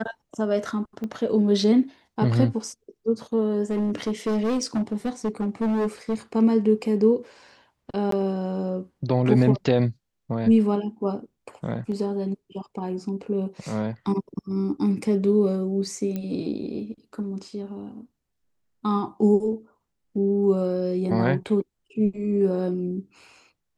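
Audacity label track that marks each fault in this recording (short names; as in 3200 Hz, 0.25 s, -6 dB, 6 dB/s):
1.040000	1.040000	pop -21 dBFS
3.620000	6.150000	clipped -20.5 dBFS
8.110000	8.120000	gap 13 ms
16.160000	16.160000	pop -18 dBFS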